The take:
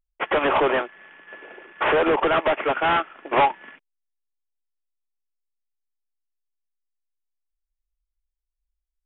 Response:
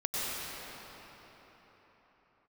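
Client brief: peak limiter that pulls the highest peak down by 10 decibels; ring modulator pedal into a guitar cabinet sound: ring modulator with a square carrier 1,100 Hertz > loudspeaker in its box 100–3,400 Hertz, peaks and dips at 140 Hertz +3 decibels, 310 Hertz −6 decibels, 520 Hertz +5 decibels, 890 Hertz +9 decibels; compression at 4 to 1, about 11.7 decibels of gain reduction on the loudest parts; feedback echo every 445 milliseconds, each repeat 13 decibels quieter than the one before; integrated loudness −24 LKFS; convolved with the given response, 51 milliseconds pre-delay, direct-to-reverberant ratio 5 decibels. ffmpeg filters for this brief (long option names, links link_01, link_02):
-filter_complex "[0:a]acompressor=threshold=-32dB:ratio=4,alimiter=level_in=6.5dB:limit=-24dB:level=0:latency=1,volume=-6.5dB,aecho=1:1:445|890|1335:0.224|0.0493|0.0108,asplit=2[link_01][link_02];[1:a]atrim=start_sample=2205,adelay=51[link_03];[link_02][link_03]afir=irnorm=-1:irlink=0,volume=-13.5dB[link_04];[link_01][link_04]amix=inputs=2:normalize=0,aeval=exprs='val(0)*sgn(sin(2*PI*1100*n/s))':channel_layout=same,highpass=100,equalizer=frequency=140:width_type=q:width=4:gain=3,equalizer=frequency=310:width_type=q:width=4:gain=-6,equalizer=frequency=520:width_type=q:width=4:gain=5,equalizer=frequency=890:width_type=q:width=4:gain=9,lowpass=frequency=3400:width=0.5412,lowpass=frequency=3400:width=1.3066,volume=11.5dB"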